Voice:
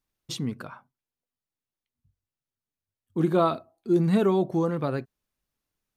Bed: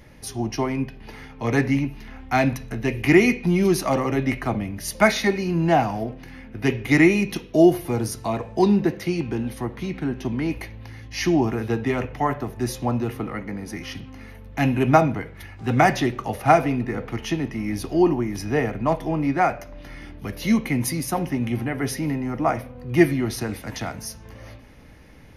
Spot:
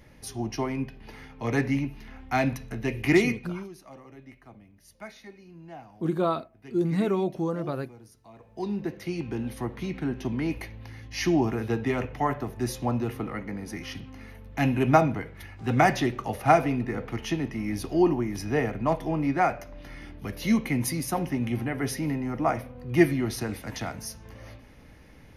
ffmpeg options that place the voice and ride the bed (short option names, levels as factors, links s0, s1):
-filter_complex "[0:a]adelay=2850,volume=0.668[s0];[1:a]volume=7.08,afade=t=out:st=3.14:d=0.55:silence=0.0944061,afade=t=in:st=8.34:d=1.28:silence=0.0794328[s1];[s0][s1]amix=inputs=2:normalize=0"